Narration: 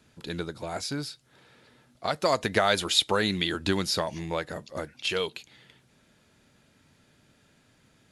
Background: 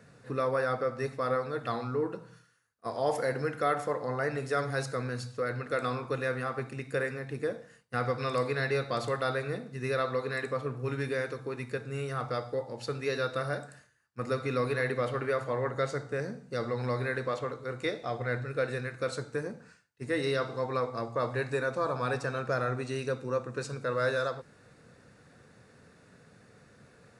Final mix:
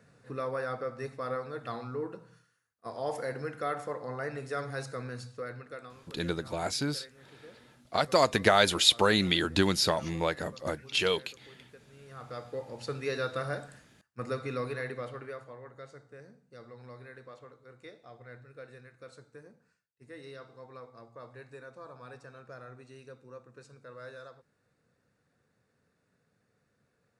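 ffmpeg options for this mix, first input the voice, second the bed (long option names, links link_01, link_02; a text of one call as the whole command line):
ffmpeg -i stem1.wav -i stem2.wav -filter_complex "[0:a]adelay=5900,volume=1dB[link_01];[1:a]volume=13.5dB,afade=type=out:start_time=5.28:duration=0.66:silence=0.177828,afade=type=in:start_time=12:duration=0.87:silence=0.11885,afade=type=out:start_time=14.02:duration=1.56:silence=0.16788[link_02];[link_01][link_02]amix=inputs=2:normalize=0" out.wav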